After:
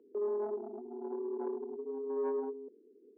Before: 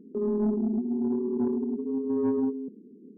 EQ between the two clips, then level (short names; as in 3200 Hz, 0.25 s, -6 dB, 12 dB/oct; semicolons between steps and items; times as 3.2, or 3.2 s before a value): inverse Chebyshev high-pass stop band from 160 Hz, stop band 50 dB; air absorption 280 m; 0.0 dB